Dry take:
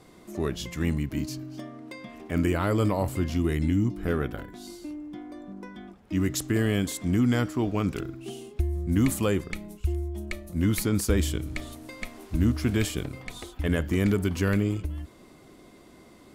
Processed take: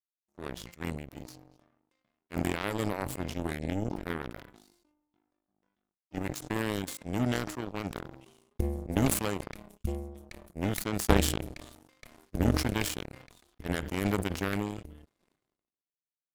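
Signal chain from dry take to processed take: power-law curve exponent 3; sustainer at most 59 dB/s; gain +8 dB

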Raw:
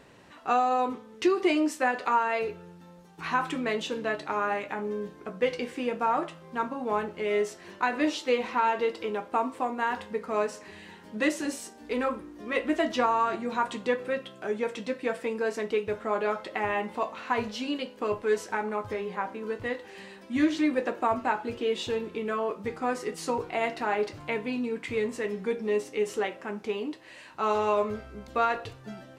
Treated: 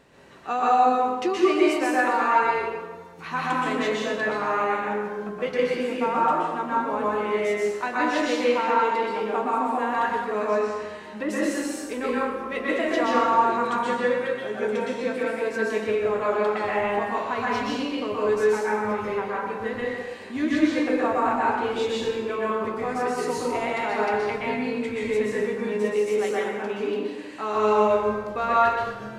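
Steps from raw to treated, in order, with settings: 10.44–11.29 treble ducked by the level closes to 1300 Hz, closed at -24 dBFS; plate-style reverb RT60 1.4 s, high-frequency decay 0.65×, pre-delay 0.11 s, DRR -6.5 dB; gain -2.5 dB

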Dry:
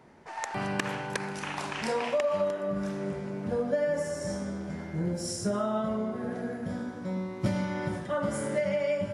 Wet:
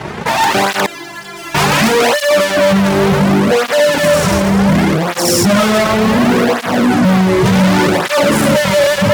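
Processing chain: high shelf 5600 Hz -8.5 dB; fuzz box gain 49 dB, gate -58 dBFS; 0.86–1.55 resonator 340 Hz, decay 0.24 s, harmonics all, mix 100%; tape flanging out of phase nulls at 0.68 Hz, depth 4.3 ms; gain +5.5 dB

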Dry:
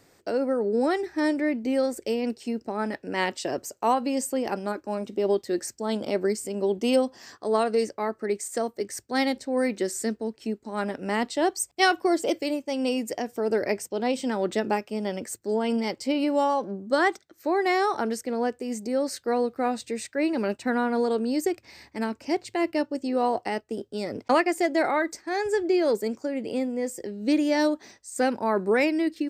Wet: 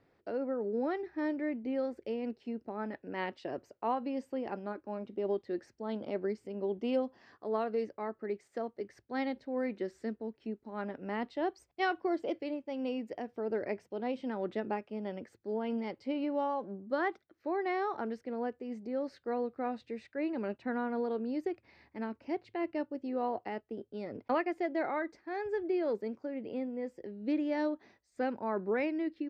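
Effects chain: air absorption 320 m; gain -8.5 dB

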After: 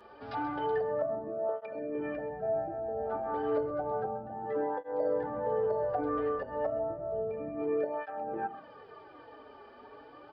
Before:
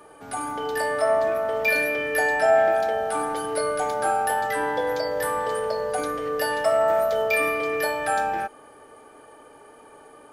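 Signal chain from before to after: treble ducked by the level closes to 330 Hz, closed at -20 dBFS; notch 2200 Hz, Q 11; de-hum 90.43 Hz, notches 34; on a send: echo 0.132 s -15.5 dB; on the sum: downsampling 11025 Hz; tape flanging out of phase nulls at 0.31 Hz, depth 6.8 ms

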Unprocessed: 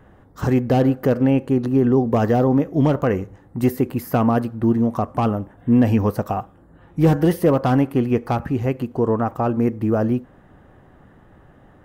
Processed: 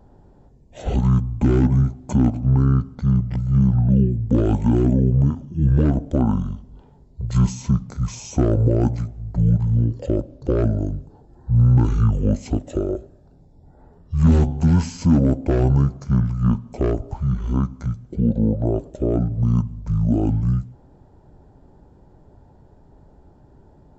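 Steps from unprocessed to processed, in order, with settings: wide varispeed 0.494×

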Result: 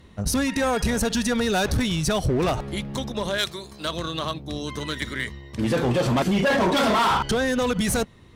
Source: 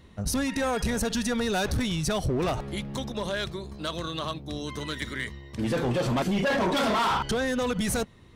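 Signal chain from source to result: 3.38–3.85 tilt +2.5 dB/oct; added harmonics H 3 -18 dB, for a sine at -17 dBFS; gain +7 dB

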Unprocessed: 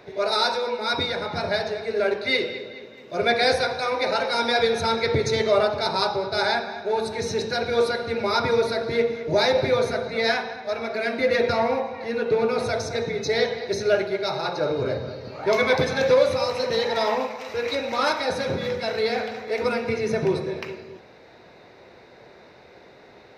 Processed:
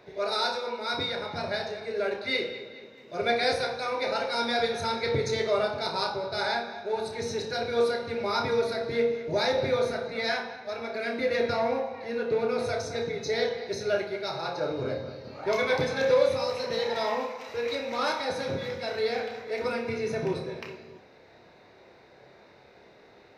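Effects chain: flutter echo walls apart 5.1 m, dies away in 0.26 s; gain -6.5 dB

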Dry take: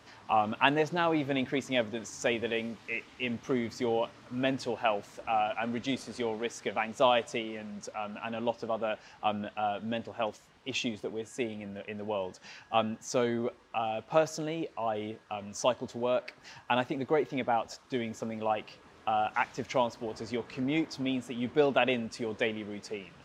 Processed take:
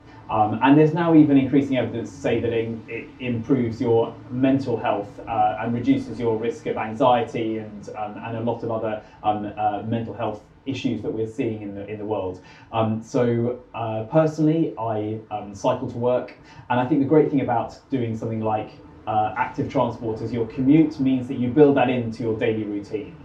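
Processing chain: tilt -3.5 dB/oct; FDN reverb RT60 0.31 s, low-frequency decay 0.95×, high-frequency decay 0.85×, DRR -3.5 dB

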